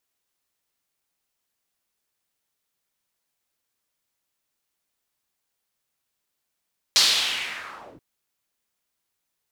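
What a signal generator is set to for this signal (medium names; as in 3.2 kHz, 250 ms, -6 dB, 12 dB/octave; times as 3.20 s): swept filtered noise pink, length 1.03 s bandpass, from 4.6 kHz, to 130 Hz, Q 2.4, linear, gain ramp -33.5 dB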